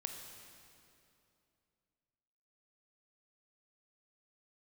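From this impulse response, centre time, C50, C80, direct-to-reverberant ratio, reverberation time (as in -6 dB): 62 ms, 4.5 dB, 5.5 dB, 3.5 dB, 2.7 s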